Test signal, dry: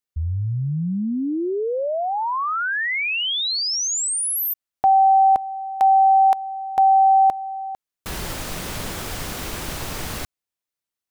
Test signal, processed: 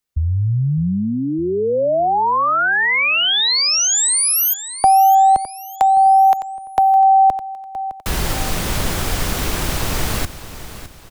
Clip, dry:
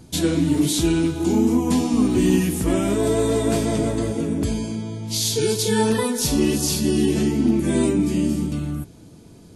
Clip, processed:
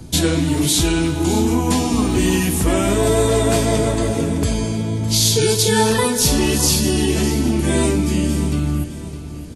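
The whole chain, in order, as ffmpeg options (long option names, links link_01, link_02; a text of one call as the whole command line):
ffmpeg -i in.wav -filter_complex "[0:a]acrossover=split=150|460[link_01][link_02][link_03];[link_01]acompressor=threshold=-31dB:ratio=4[link_04];[link_02]acompressor=threshold=-33dB:ratio=4[link_05];[link_03]acompressor=threshold=-18dB:ratio=4[link_06];[link_04][link_05][link_06]amix=inputs=3:normalize=0,lowshelf=frequency=100:gain=8,aecho=1:1:610|1220|1830|2440:0.211|0.0845|0.0338|0.0135,volume=7dB" out.wav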